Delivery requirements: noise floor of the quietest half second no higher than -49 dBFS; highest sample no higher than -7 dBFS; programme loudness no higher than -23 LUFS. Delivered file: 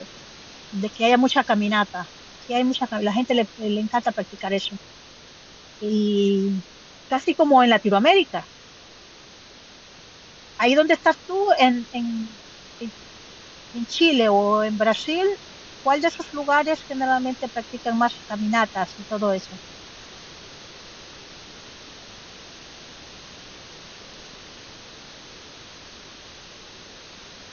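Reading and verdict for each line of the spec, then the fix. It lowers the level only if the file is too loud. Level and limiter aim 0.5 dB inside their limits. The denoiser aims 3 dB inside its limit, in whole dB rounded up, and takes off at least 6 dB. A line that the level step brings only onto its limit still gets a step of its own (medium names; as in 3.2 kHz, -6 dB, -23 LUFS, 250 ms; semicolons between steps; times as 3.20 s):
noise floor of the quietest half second -46 dBFS: fail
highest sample -4.0 dBFS: fail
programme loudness -21.5 LUFS: fail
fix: noise reduction 6 dB, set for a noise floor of -46 dBFS; trim -2 dB; peak limiter -7.5 dBFS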